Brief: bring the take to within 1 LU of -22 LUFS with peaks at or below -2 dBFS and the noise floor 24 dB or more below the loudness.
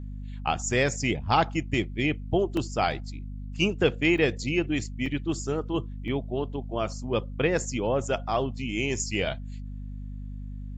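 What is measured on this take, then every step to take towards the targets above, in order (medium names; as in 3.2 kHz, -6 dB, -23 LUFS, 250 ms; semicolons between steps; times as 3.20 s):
dropouts 4; longest dropout 2.4 ms; hum 50 Hz; highest harmonic 250 Hz; hum level -34 dBFS; loudness -27.5 LUFS; peak level -8.5 dBFS; loudness target -22.0 LUFS
-> interpolate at 2.57/4.18/5.06/6.08 s, 2.4 ms; de-hum 50 Hz, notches 5; trim +5.5 dB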